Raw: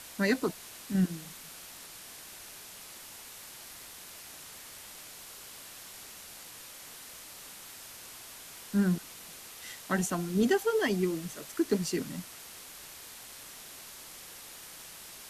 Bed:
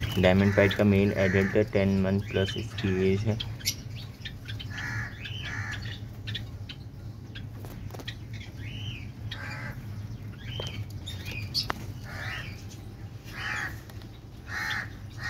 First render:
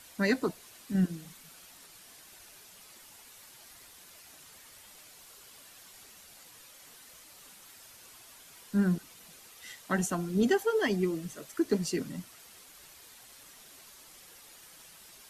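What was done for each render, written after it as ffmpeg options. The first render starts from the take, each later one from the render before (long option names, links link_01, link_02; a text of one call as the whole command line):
ffmpeg -i in.wav -af "afftdn=noise_reduction=8:noise_floor=-48" out.wav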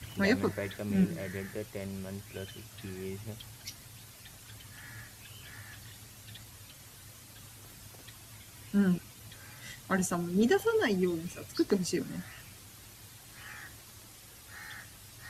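ffmpeg -i in.wav -i bed.wav -filter_complex "[1:a]volume=-15dB[link_01];[0:a][link_01]amix=inputs=2:normalize=0" out.wav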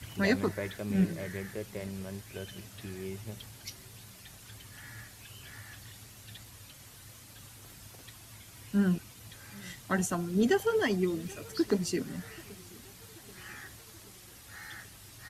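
ffmpeg -i in.wav -af "aecho=1:1:782|1564|2346|3128:0.0631|0.0372|0.022|0.013" out.wav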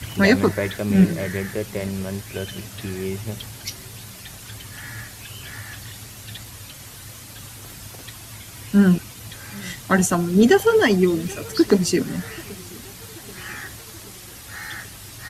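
ffmpeg -i in.wav -af "volume=12dB,alimiter=limit=-3dB:level=0:latency=1" out.wav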